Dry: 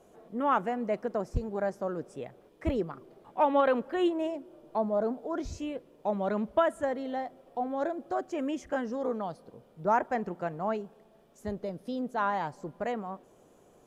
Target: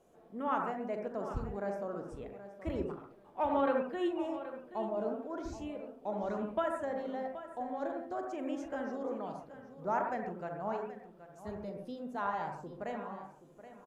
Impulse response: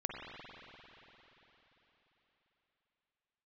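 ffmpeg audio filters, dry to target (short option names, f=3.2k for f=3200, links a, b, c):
-filter_complex "[0:a]asplit=2[a][b];[b]adelay=40,volume=-12.5dB[c];[a][c]amix=inputs=2:normalize=0,aecho=1:1:776|1552:0.211|0.0338[d];[1:a]atrim=start_sample=2205,afade=t=out:st=0.15:d=0.01,atrim=end_sample=7056,asetrate=31752,aresample=44100[e];[d][e]afir=irnorm=-1:irlink=0,volume=-7.5dB"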